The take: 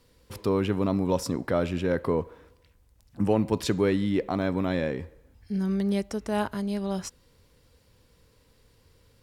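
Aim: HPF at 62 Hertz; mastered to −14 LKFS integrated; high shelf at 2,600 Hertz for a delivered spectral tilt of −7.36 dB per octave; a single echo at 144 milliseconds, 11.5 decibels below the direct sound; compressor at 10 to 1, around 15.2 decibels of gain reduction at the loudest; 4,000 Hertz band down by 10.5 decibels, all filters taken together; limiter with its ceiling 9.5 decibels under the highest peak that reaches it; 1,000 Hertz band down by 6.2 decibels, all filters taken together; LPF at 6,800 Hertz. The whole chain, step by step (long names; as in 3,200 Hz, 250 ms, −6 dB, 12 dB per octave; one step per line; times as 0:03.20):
high-pass filter 62 Hz
low-pass filter 6,800 Hz
parametric band 1,000 Hz −7 dB
high-shelf EQ 2,600 Hz −4.5 dB
parametric band 4,000 Hz −9 dB
downward compressor 10 to 1, threshold −36 dBFS
brickwall limiter −34 dBFS
single-tap delay 144 ms −11.5 dB
level +30 dB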